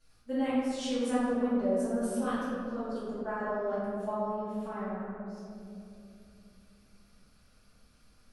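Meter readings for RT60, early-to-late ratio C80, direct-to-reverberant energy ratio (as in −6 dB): 2.7 s, −0.5 dB, −14.0 dB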